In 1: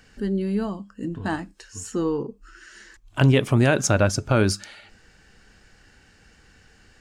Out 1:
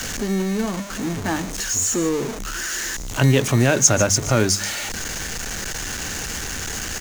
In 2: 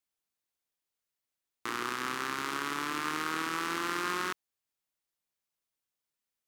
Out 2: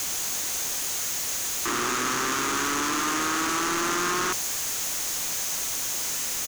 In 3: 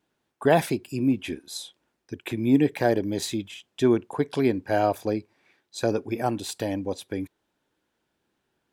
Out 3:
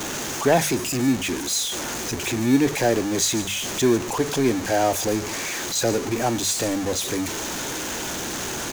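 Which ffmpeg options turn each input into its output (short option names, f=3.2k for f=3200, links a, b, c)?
-filter_complex "[0:a]aeval=exprs='val(0)+0.5*0.0631*sgn(val(0))':c=same,equalizer=f=6.5k:w=3.3:g=11,bandreject=f=50:t=h:w=6,bandreject=f=100:t=h:w=6,bandreject=f=150:t=h:w=6,bandreject=f=200:t=h:w=6,acrossover=split=260|1700|3600[a][b][c][d];[a]acrusher=samples=22:mix=1:aa=0.000001[e];[d]aecho=1:1:147:0.266[f];[e][b][c][f]amix=inputs=4:normalize=0"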